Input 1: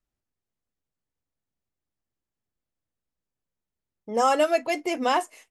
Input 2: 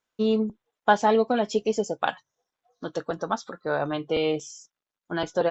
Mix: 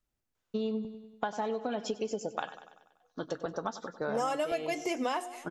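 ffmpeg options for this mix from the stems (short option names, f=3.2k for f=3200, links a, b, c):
-filter_complex "[0:a]bandreject=f=357.5:t=h:w=4,bandreject=f=715:t=h:w=4,bandreject=f=1.0725k:t=h:w=4,bandreject=f=1.43k:t=h:w=4,bandreject=f=1.7875k:t=h:w=4,bandreject=f=2.145k:t=h:w=4,bandreject=f=2.5025k:t=h:w=4,bandreject=f=2.86k:t=h:w=4,bandreject=f=3.2175k:t=h:w=4,bandreject=f=3.575k:t=h:w=4,bandreject=f=3.9325k:t=h:w=4,bandreject=f=4.29k:t=h:w=4,bandreject=f=4.6475k:t=h:w=4,bandreject=f=5.005k:t=h:w=4,bandreject=f=5.3625k:t=h:w=4,bandreject=f=5.72k:t=h:w=4,bandreject=f=6.0775k:t=h:w=4,bandreject=f=6.435k:t=h:w=4,bandreject=f=6.7925k:t=h:w=4,bandreject=f=7.15k:t=h:w=4,bandreject=f=7.5075k:t=h:w=4,bandreject=f=7.865k:t=h:w=4,bandreject=f=8.2225k:t=h:w=4,bandreject=f=8.58k:t=h:w=4,bandreject=f=8.9375k:t=h:w=4,bandreject=f=9.295k:t=h:w=4,bandreject=f=9.6525k:t=h:w=4,bandreject=f=10.01k:t=h:w=4,bandreject=f=10.3675k:t=h:w=4,bandreject=f=10.725k:t=h:w=4,bandreject=f=11.0825k:t=h:w=4,bandreject=f=11.44k:t=h:w=4,bandreject=f=11.7975k:t=h:w=4,bandreject=f=12.155k:t=h:w=4,bandreject=f=12.5125k:t=h:w=4,bandreject=f=12.87k:t=h:w=4,bandreject=f=13.2275k:t=h:w=4,volume=1dB,asplit=2[a][b];[b]volume=-23dB[c];[1:a]acompressor=threshold=-24dB:ratio=2,adelay=350,volume=-3.5dB,asplit=2[d][e];[e]volume=-16dB[f];[c][f]amix=inputs=2:normalize=0,aecho=0:1:96|192|288|384|480|576|672|768:1|0.55|0.303|0.166|0.0915|0.0503|0.0277|0.0152[g];[a][d][g]amix=inputs=3:normalize=0,acompressor=threshold=-29dB:ratio=6"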